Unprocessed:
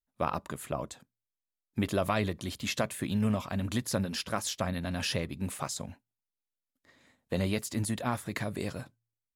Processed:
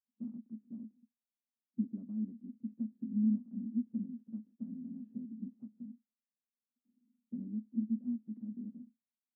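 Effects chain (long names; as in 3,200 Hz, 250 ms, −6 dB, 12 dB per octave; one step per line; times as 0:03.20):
compressing power law on the bin magnitudes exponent 0.62
flat-topped band-pass 230 Hz, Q 5.9
level +4 dB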